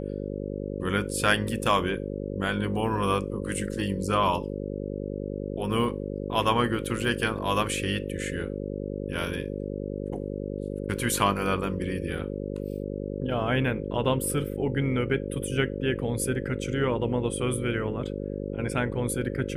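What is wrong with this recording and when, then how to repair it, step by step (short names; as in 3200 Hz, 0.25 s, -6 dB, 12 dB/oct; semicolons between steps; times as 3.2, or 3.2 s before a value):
buzz 50 Hz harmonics 11 -33 dBFS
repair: de-hum 50 Hz, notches 11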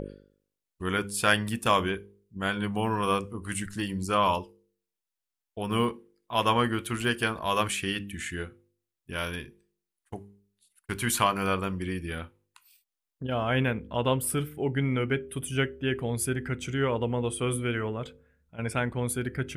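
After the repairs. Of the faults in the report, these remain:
none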